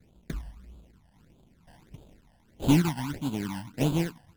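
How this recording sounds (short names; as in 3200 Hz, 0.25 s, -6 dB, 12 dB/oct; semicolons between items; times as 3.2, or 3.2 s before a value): aliases and images of a low sample rate 1200 Hz, jitter 20%; phasing stages 12, 1.6 Hz, lowest notch 390–1900 Hz; Vorbis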